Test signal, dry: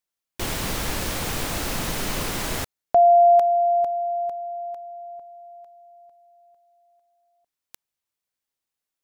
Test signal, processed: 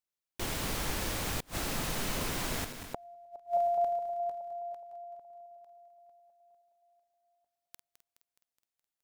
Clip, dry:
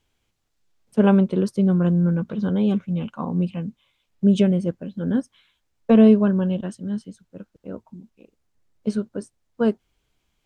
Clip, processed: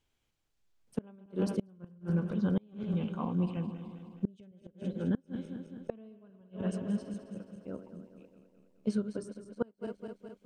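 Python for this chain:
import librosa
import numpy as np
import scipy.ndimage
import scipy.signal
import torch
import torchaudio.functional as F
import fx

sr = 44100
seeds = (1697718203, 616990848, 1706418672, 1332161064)

y = fx.reverse_delay_fb(x, sr, ms=105, feedback_pct=77, wet_db=-11.0)
y = fx.gate_flip(y, sr, shuts_db=-12.0, range_db=-31)
y = y * librosa.db_to_amplitude(-7.5)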